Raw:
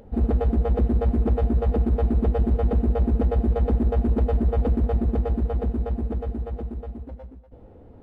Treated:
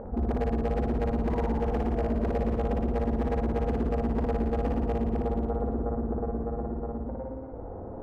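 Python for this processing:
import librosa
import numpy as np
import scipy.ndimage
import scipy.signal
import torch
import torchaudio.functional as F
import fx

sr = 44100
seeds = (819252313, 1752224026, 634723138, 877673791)

y = scipy.signal.sosfilt(scipy.signal.butter(4, 1300.0, 'lowpass', fs=sr, output='sos'), x)
y = fx.low_shelf(y, sr, hz=440.0, db=-8.0)
y = fx.spec_paint(y, sr, seeds[0], shape='fall', start_s=1.29, length_s=1.49, low_hz=420.0, high_hz=1000.0, level_db=-44.0)
y = 10.0 ** (-22.5 / 20.0) * (np.abs((y / 10.0 ** (-22.5 / 20.0) + 3.0) % 4.0 - 2.0) - 1.0)
y = fx.room_flutter(y, sr, wall_m=9.8, rt60_s=1.1)
y = fx.env_flatten(y, sr, amount_pct=50)
y = y * 10.0 ** (-1.5 / 20.0)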